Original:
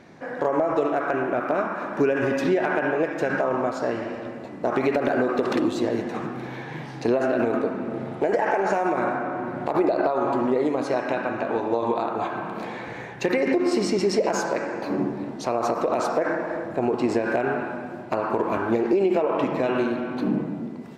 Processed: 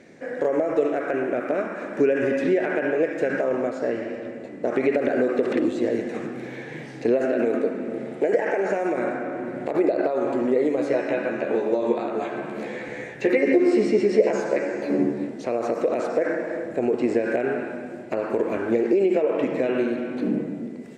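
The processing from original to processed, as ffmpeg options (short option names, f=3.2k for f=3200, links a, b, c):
-filter_complex "[0:a]asettb=1/sr,asplit=3[a][b][c];[a]atrim=end=3.674[d];[b]atrim=start=3.67:end=4.68,asetpts=PTS-STARTPTS,afade=t=in:d=0.004:c=qsin,afade=t=out:st=1.006:d=0.004:c=qsin,highshelf=f=5.2k:g=-7.5[e];[c]atrim=start=4.676[f];[d][e]acrossfade=d=0.004:c1=hsin:c2=qsin[g];[g][f]acrossfade=d=0.004:c1=qsin:c2=hsin,asettb=1/sr,asplit=3[h][i][j];[h]atrim=end=7.254[k];[i]atrim=start=7.25:end=8.34,asetpts=PTS-STARTPTS,afade=t=in:d=0.004:c=qsin,afade=t=out:st=1.086:d=0.004:c=qsin,highpass=140[l];[j]atrim=start=8.336[m];[k][l]acrossfade=d=0.004:c1=hsin:c2=qsin[n];[n][m]acrossfade=d=0.004:c1=qsin:c2=hsin,asettb=1/sr,asplit=3[o][p][q];[o]atrim=end=10.764[r];[p]atrim=start=10.76:end=15.27,asetpts=PTS-STARTPTS,afade=t=in:d=0.004:c=qsin,afade=t=out:st=4.506:d=0.004:c=qsin,asplit=2[s][t];[t]adelay=14,volume=-3.5dB[u];[s][u]amix=inputs=2:normalize=0,atrim=end_sample=198891[v];[q]atrim=start=15.266[w];[r][v]acrossfade=d=0.004:c1=hsin:c2=qsin[x];[x][w]acrossfade=d=0.004:c1=qsin:c2=hsin,acrossover=split=3400[y][z];[z]acompressor=threshold=-51dB:ratio=4:attack=1:release=60[aa];[y][aa]amix=inputs=2:normalize=0,equalizer=f=250:t=o:w=1:g=5,equalizer=f=500:t=o:w=1:g=10,equalizer=f=1k:t=o:w=1:g=-8,equalizer=f=2k:t=o:w=1:g=9,equalizer=f=8k:t=o:w=1:g=12,volume=-6.5dB"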